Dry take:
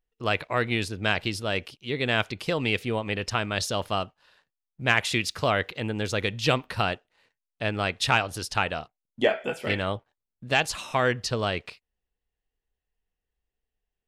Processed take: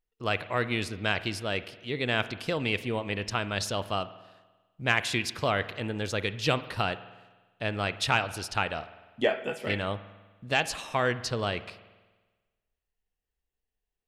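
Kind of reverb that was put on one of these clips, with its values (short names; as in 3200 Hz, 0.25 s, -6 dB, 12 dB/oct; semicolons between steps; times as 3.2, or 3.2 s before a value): spring tank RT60 1.3 s, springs 49 ms, chirp 25 ms, DRR 14 dB; gain -3 dB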